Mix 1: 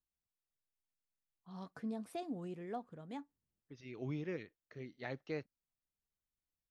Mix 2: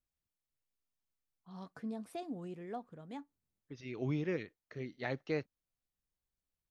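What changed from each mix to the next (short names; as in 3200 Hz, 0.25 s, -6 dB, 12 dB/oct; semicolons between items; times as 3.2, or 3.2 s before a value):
second voice +5.5 dB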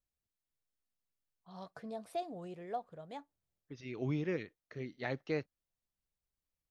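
first voice: add fifteen-band EQ 250 Hz -9 dB, 630 Hz +8 dB, 4000 Hz +4 dB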